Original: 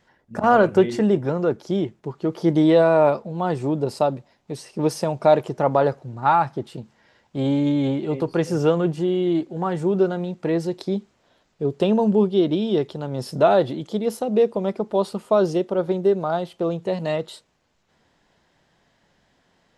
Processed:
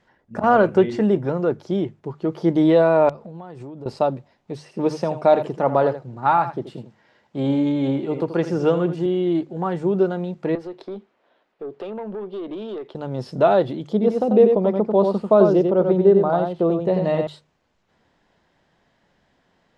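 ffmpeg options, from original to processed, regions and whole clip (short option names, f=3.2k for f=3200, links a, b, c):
-filter_complex "[0:a]asettb=1/sr,asplit=3[a][b][c];[a]atrim=end=3.094[d];[b]atrim=start=3.09:end=3.86,asetpts=PTS-STARTPTS,afade=t=in:d=0.004:c=qsin,afade=t=out:st=0.766:d=0.004:c=qsin,acompressor=threshold=-32dB:ratio=16:attack=3.2:release=140:knee=1:detection=peak,aeval=exprs='(mod(10.6*val(0)+1,2)-1)/10.6':c=same[e];[c]atrim=start=3.856[f];[d][e]acrossfade=d=0.004:c1=hsin:c2=qsin[g];[g][f]acrossfade=d=0.004:c1=qsin:c2=hsin,asettb=1/sr,asplit=3[h][i][j];[h]atrim=end=4.634[k];[i]atrim=start=4.63:end=9.06,asetpts=PTS-STARTPTS,afade=t=in:d=0.004:c=qsin,afade=t=out:st=4.426:d=0.004:c=qsin,highpass=110,aecho=1:1:81:0.266,atrim=end_sample=195363[l];[j]atrim=start=9.056[m];[k][l]acrossfade=d=0.004:c1=hsin:c2=qsin[n];[n][m]acrossfade=d=0.004:c1=qsin:c2=hsin,asettb=1/sr,asplit=3[o][p][q];[o]atrim=end=10.554[r];[p]atrim=start=10.55:end=12.95,asetpts=PTS-STARTPTS,afade=t=in:d=0.004:c=qsin,afade=t=out:st=2.396:d=0.004:c=qsin,acrossover=split=260 3700:gain=0.0891 1 0.178[s][t][u];[s][t][u]amix=inputs=3:normalize=0,acompressor=threshold=-26dB:ratio=4:attack=3.2:release=140:knee=1:detection=peak,aeval=exprs='(tanh(17.8*val(0)+0.1)-tanh(0.1))/17.8':c=same[v];[q]atrim=start=12.946[w];[r][v]acrossfade=d=0.004:c1=hsin:c2=qsin[x];[x][w]acrossfade=d=0.004:c1=qsin:c2=hsin,asettb=1/sr,asplit=3[y][z][aa];[y]atrim=end=13.934[ab];[z]atrim=start=13.93:end=17.27,asetpts=PTS-STARTPTS,afade=t=in:d=0.004:c=qsin,afade=t=out:st=3.336:d=0.004:c=qsin,lowpass=8.2k,tiltshelf=f=1.4k:g=4.5,aecho=1:1:92:0.562,atrim=end_sample=147294[ac];[aa]atrim=start=17.266[ad];[ab][ac]acrossfade=d=0.004:c1=hsin:c2=qsin[ae];[ae][ad]acrossfade=d=0.004:c1=qsin:c2=hsin,acrossover=split=7000[af][ag];[ag]acompressor=threshold=-56dB:ratio=4:attack=1:release=60[ah];[af][ah]amix=inputs=2:normalize=0,aemphasis=mode=reproduction:type=cd,bandreject=f=50:t=h:w=6,bandreject=f=100:t=h:w=6,bandreject=f=150:t=h:w=6"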